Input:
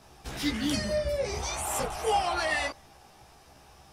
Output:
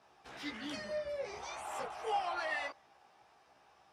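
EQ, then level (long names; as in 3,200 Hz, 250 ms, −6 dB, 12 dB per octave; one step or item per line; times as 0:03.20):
resonant band-pass 1,200 Hz, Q 0.54
−7.0 dB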